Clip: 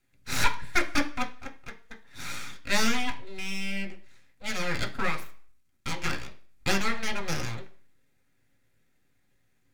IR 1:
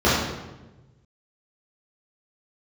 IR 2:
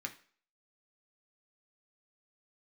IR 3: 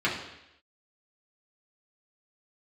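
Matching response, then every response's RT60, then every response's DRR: 2; 1.1 s, non-exponential decay, 0.85 s; −11.5, 2.5, −6.5 decibels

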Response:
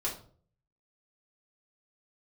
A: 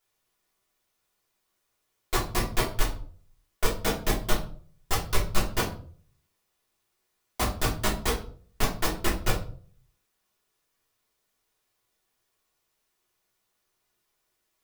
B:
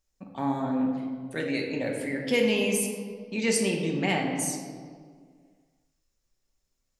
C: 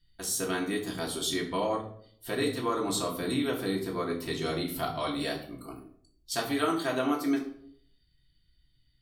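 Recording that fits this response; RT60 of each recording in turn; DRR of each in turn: A; 0.45, 1.9, 0.60 seconds; −6.0, 0.0, −2.5 decibels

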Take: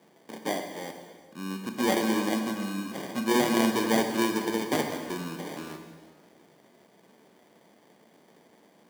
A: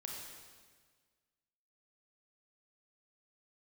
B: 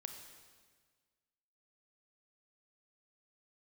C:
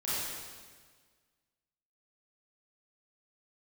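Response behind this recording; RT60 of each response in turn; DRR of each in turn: B; 1.6, 1.6, 1.6 seconds; −1.5, 5.0, −11.5 decibels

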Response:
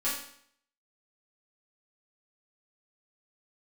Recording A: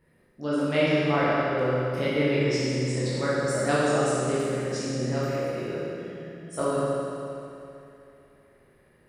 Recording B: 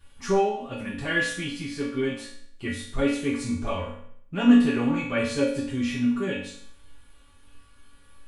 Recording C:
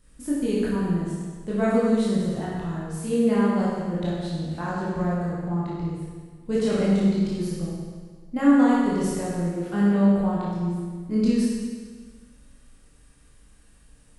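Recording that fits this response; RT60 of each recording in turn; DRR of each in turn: B; 2.8, 0.65, 1.6 seconds; −9.5, −11.0, −8.0 decibels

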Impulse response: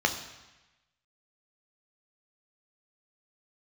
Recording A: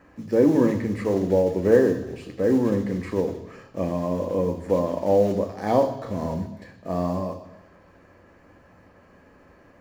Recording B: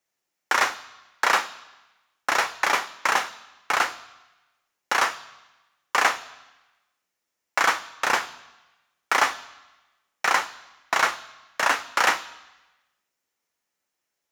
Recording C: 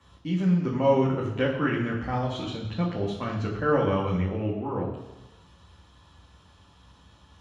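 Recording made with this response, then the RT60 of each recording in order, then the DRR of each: A; 1.1, 1.1, 1.1 seconds; 4.0, 12.5, −4.0 decibels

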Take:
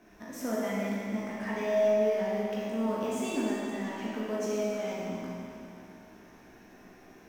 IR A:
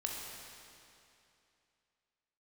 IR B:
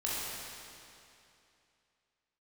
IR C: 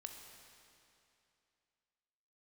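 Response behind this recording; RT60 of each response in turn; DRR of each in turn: B; 2.7, 2.7, 2.7 seconds; −1.5, −7.5, 3.5 decibels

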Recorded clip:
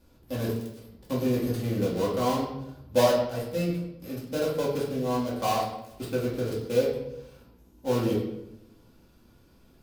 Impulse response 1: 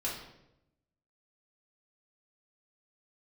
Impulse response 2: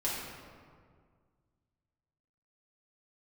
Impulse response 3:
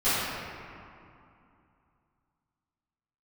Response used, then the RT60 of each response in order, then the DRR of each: 1; 0.85, 1.9, 2.6 seconds; −6.0, −8.0, −18.0 decibels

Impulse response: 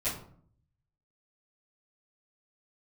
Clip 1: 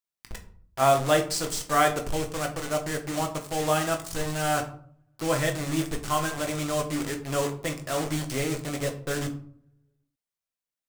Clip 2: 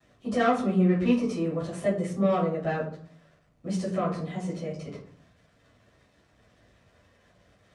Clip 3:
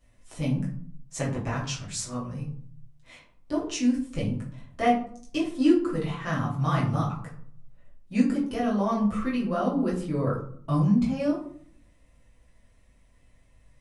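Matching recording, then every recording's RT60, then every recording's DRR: 2; 0.55, 0.55, 0.55 seconds; 3.5, −14.5, −6.5 decibels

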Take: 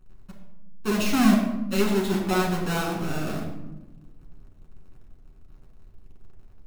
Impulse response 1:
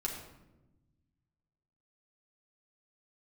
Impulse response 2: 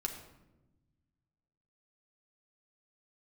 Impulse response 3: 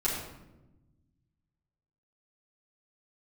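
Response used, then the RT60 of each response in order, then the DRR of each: 1; 1.0, 1.0, 1.0 seconds; −1.5, 2.5, −8.0 decibels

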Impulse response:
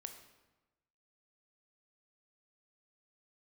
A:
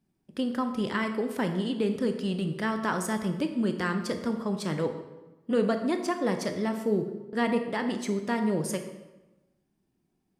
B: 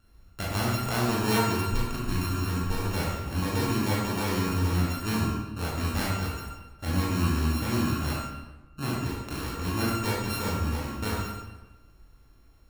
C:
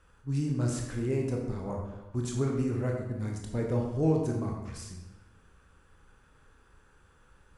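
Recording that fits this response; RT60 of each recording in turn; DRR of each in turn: A; 1.1, 1.1, 1.1 seconds; 6.0, −6.5, 0.0 decibels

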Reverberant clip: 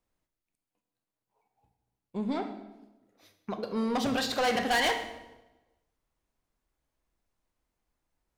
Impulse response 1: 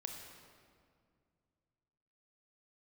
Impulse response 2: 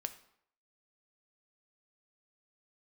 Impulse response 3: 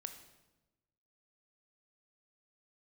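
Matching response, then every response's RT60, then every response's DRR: 3; 2.2, 0.70, 1.1 seconds; 2.5, 8.5, 7.0 decibels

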